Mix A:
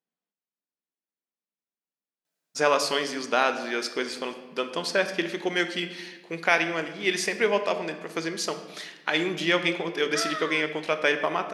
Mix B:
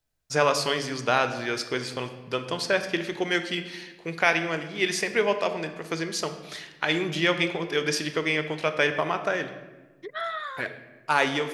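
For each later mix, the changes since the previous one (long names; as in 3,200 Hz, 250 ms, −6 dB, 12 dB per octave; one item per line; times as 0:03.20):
first voice: entry −2.25 s
master: remove linear-phase brick-wall high-pass 160 Hz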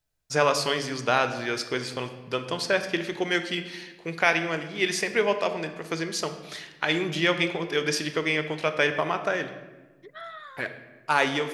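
second voice −9.0 dB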